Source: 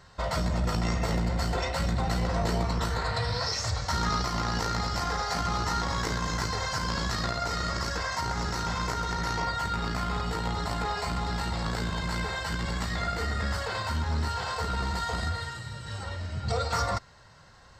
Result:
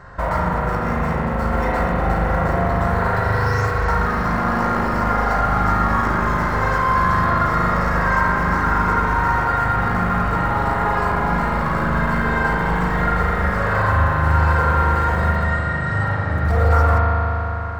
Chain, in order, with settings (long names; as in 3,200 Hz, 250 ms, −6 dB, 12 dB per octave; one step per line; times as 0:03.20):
in parallel at −8.5 dB: wrap-around overflow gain 26.5 dB
on the sum: downward compressor, threshold −29 dBFS, peak gain reduction 7 dB
high shelf with overshoot 2,400 Hz −13.5 dB, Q 1.5
spring reverb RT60 4 s, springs 39 ms, chirp 25 ms, DRR −4.5 dB
level +8.5 dB